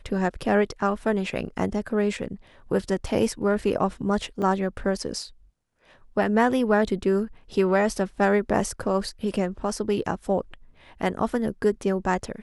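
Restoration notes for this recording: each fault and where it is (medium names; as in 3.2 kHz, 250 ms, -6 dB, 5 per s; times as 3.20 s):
4.42 s: dropout 3.7 ms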